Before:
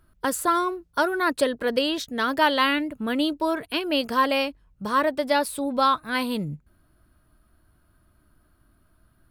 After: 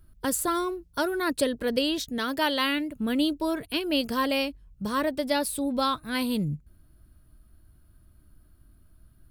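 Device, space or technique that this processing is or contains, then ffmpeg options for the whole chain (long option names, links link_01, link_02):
smiley-face EQ: -filter_complex "[0:a]lowshelf=frequency=120:gain=8,equalizer=frequency=1100:width_type=o:width=2.2:gain=-7.5,highshelf=frequency=8200:gain=3.5,asettb=1/sr,asplit=3[link_01][link_02][link_03];[link_01]atrim=end=2.184[link_04];[link_02]atrim=start=2.18:end=2.96,asetpts=PTS-STARTPTS,afade=type=in:duration=0.004:curve=qsin,afade=type=out:start_time=0.776:duration=0.004:curve=qsin,lowshelf=frequency=180:gain=-8[link_05];[link_03]atrim=start=2.956[link_06];[link_04][link_05]acrossfade=duration=0.004:curve1=hsin:curve2=qsin[link_07];[link_07][link_06]acrossfade=duration=0.004:curve1=qsin:curve2=hsin"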